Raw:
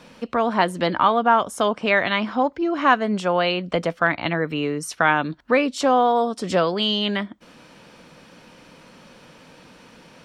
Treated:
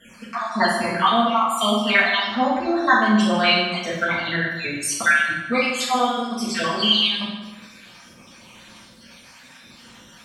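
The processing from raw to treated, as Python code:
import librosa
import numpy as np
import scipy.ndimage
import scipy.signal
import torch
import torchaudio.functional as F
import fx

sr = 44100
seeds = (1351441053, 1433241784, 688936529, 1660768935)

y = fx.spec_dropout(x, sr, seeds[0], share_pct=55)
y = fx.tone_stack(y, sr, knobs='5-5-5')
y = fx.rev_fdn(y, sr, rt60_s=1.2, lf_ratio=1.05, hf_ratio=0.75, size_ms=26.0, drr_db=-9.5)
y = y * librosa.db_to_amplitude(8.0)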